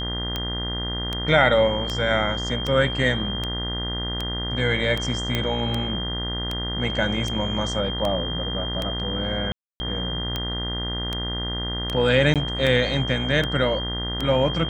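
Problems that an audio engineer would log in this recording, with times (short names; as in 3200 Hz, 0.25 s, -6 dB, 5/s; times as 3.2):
buzz 60 Hz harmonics 34 -30 dBFS
tick 78 rpm -12 dBFS
tone 3200 Hz -29 dBFS
5.35 pop -9 dBFS
9.52–9.8 gap 0.28 s
12.34–12.36 gap 17 ms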